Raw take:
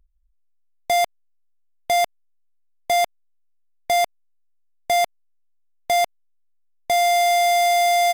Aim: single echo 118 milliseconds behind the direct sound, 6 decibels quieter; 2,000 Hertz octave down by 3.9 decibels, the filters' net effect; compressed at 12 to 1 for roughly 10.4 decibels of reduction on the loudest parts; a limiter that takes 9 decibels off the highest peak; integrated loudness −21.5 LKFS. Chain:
parametric band 2,000 Hz −4 dB
downward compressor 12 to 1, threshold −28 dBFS
brickwall limiter −26 dBFS
single-tap delay 118 ms −6 dB
level +11.5 dB

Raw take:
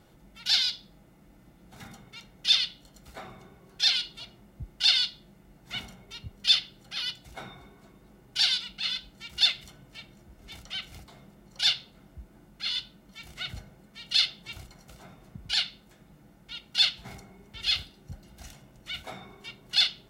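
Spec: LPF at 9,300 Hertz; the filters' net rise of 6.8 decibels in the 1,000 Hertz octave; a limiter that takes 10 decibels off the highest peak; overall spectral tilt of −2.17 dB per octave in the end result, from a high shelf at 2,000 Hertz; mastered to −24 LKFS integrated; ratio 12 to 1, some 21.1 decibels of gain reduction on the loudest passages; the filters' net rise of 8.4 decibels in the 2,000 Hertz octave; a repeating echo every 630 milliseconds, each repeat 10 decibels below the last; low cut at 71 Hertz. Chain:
high-pass filter 71 Hz
low-pass filter 9,300 Hz
parametric band 1,000 Hz +6 dB
high-shelf EQ 2,000 Hz +4.5 dB
parametric band 2,000 Hz +6.5 dB
downward compressor 12 to 1, threshold −33 dBFS
brickwall limiter −28 dBFS
repeating echo 630 ms, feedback 32%, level −10 dB
level +17 dB

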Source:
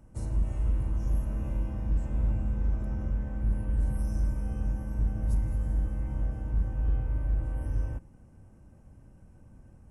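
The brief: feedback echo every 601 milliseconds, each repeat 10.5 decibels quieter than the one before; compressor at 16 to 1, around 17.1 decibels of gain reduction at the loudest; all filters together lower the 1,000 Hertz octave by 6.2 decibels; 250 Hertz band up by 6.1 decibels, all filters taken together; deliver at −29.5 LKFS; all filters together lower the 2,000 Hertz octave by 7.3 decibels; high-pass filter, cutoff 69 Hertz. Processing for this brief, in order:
high-pass filter 69 Hz
parametric band 250 Hz +8.5 dB
parametric band 1,000 Hz −7.5 dB
parametric band 2,000 Hz −7 dB
downward compressor 16 to 1, threshold −43 dBFS
repeating echo 601 ms, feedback 30%, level −10.5 dB
level +19.5 dB

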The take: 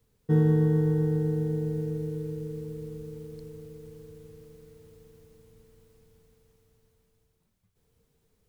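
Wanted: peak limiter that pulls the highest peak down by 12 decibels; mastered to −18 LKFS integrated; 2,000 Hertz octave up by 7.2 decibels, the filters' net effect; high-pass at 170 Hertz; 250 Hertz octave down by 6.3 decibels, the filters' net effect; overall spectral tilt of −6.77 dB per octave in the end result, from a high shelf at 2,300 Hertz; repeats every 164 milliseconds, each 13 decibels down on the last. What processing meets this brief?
high-pass filter 170 Hz
parametric band 250 Hz −8 dB
parametric band 2,000 Hz +5.5 dB
high-shelf EQ 2,300 Hz +7.5 dB
brickwall limiter −29.5 dBFS
repeating echo 164 ms, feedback 22%, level −13 dB
level +22 dB

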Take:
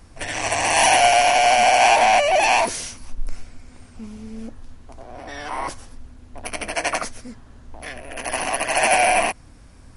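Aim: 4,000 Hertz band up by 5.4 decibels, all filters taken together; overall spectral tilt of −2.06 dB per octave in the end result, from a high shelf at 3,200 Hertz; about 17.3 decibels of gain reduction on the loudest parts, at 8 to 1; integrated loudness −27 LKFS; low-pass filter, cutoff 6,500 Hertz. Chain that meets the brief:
low-pass filter 6,500 Hz
high-shelf EQ 3,200 Hz +3.5 dB
parametric band 4,000 Hz +6 dB
downward compressor 8 to 1, threshold −29 dBFS
level +5 dB

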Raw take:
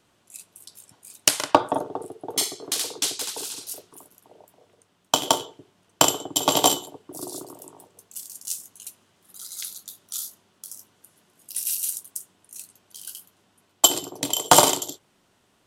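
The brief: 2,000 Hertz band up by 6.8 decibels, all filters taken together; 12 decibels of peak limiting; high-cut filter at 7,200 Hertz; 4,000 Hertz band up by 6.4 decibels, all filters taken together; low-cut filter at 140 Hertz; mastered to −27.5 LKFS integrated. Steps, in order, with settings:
high-pass filter 140 Hz
low-pass filter 7,200 Hz
parametric band 2,000 Hz +7.5 dB
parametric band 4,000 Hz +6 dB
level −2.5 dB
brickwall limiter −10 dBFS

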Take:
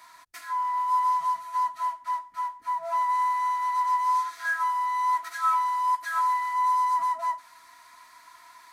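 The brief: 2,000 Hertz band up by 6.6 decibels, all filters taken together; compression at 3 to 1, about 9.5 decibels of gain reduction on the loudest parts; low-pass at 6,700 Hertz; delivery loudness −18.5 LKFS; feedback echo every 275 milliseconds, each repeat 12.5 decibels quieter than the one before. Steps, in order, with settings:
low-pass filter 6,700 Hz
parametric band 2,000 Hz +8 dB
downward compressor 3 to 1, threshold −31 dBFS
repeating echo 275 ms, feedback 24%, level −12.5 dB
level +12.5 dB

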